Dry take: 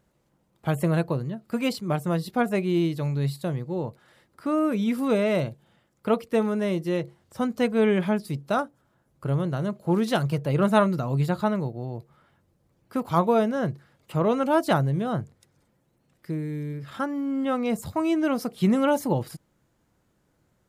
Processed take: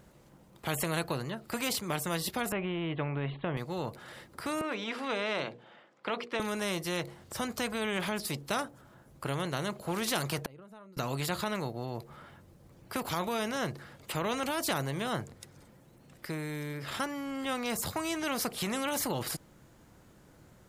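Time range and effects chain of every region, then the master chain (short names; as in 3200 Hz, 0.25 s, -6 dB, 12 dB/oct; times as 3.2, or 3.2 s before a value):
2.52–3.57 steep low-pass 3300 Hz 72 dB/oct + tilt shelf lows +5.5 dB, about 1300 Hz
4.61–6.4 BPF 380–3200 Hz + notches 60/120/180/240/300/360/420/480 Hz
10.41–10.97 compressor 10:1, threshold -25 dBFS + flipped gate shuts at -27 dBFS, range -30 dB
whole clip: limiter -17 dBFS; spectral compressor 2:1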